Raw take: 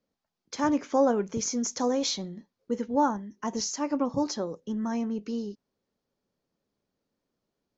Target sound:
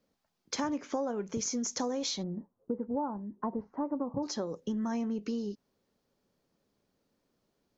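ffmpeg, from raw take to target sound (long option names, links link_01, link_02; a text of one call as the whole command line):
ffmpeg -i in.wav -filter_complex "[0:a]asplit=3[link_01][link_02][link_03];[link_01]afade=type=out:start_time=2.22:duration=0.02[link_04];[link_02]lowpass=frequency=1100:width=0.5412,lowpass=frequency=1100:width=1.3066,afade=type=in:start_time=2.22:duration=0.02,afade=type=out:start_time=4.22:duration=0.02[link_05];[link_03]afade=type=in:start_time=4.22:duration=0.02[link_06];[link_04][link_05][link_06]amix=inputs=3:normalize=0,acompressor=threshold=-36dB:ratio=6,volume=5dB" out.wav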